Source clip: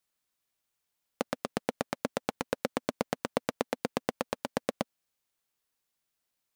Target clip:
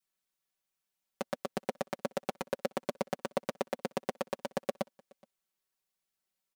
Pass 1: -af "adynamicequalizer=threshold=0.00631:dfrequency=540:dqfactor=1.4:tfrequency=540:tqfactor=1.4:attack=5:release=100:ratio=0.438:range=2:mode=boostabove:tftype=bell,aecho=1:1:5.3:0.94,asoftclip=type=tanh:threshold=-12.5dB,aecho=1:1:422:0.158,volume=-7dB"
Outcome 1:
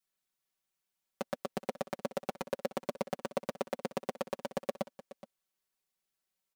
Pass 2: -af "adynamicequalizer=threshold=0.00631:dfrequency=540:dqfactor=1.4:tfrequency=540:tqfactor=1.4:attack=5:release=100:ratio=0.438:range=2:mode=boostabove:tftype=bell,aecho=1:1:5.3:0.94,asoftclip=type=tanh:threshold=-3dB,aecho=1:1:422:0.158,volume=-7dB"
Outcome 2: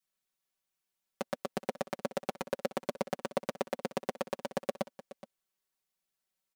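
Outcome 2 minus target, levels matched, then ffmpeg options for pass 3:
echo-to-direct +11 dB
-af "adynamicequalizer=threshold=0.00631:dfrequency=540:dqfactor=1.4:tfrequency=540:tqfactor=1.4:attack=5:release=100:ratio=0.438:range=2:mode=boostabove:tftype=bell,aecho=1:1:5.3:0.94,asoftclip=type=tanh:threshold=-3dB,aecho=1:1:422:0.0447,volume=-7dB"

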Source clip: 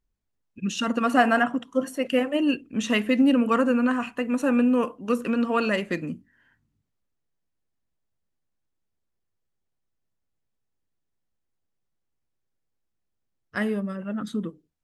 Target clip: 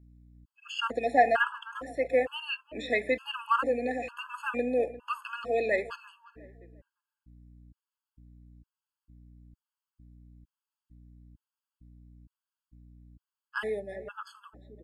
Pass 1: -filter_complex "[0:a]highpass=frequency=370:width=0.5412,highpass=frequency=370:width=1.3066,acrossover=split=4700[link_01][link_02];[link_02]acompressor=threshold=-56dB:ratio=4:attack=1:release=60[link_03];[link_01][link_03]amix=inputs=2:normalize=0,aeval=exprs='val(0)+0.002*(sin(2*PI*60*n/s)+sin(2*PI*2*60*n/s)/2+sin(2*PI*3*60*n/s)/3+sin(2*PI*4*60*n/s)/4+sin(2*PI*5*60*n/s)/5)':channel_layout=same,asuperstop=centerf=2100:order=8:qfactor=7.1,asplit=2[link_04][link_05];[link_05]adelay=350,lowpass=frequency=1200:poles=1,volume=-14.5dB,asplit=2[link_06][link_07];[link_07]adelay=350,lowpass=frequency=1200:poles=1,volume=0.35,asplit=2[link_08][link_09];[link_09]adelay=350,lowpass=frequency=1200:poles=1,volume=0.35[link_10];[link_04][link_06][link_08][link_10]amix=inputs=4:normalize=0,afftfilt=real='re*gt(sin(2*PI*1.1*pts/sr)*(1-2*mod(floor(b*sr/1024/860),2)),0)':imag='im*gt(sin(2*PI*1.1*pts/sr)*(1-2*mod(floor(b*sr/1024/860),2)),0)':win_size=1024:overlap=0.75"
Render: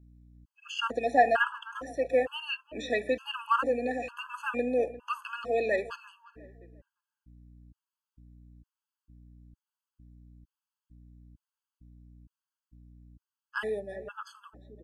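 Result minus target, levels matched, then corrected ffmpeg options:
8,000 Hz band +3.0 dB
-filter_complex "[0:a]highpass=frequency=370:width=0.5412,highpass=frequency=370:width=1.3066,acrossover=split=4700[link_01][link_02];[link_02]acompressor=threshold=-56dB:ratio=4:attack=1:release=60[link_03];[link_01][link_03]amix=inputs=2:normalize=0,aeval=exprs='val(0)+0.002*(sin(2*PI*60*n/s)+sin(2*PI*2*60*n/s)/2+sin(2*PI*3*60*n/s)/3+sin(2*PI*4*60*n/s)/4+sin(2*PI*5*60*n/s)/5)':channel_layout=same,asuperstop=centerf=6000:order=8:qfactor=7.1,asplit=2[link_04][link_05];[link_05]adelay=350,lowpass=frequency=1200:poles=1,volume=-14.5dB,asplit=2[link_06][link_07];[link_07]adelay=350,lowpass=frequency=1200:poles=1,volume=0.35,asplit=2[link_08][link_09];[link_09]adelay=350,lowpass=frequency=1200:poles=1,volume=0.35[link_10];[link_04][link_06][link_08][link_10]amix=inputs=4:normalize=0,afftfilt=real='re*gt(sin(2*PI*1.1*pts/sr)*(1-2*mod(floor(b*sr/1024/860),2)),0)':imag='im*gt(sin(2*PI*1.1*pts/sr)*(1-2*mod(floor(b*sr/1024/860),2)),0)':win_size=1024:overlap=0.75"

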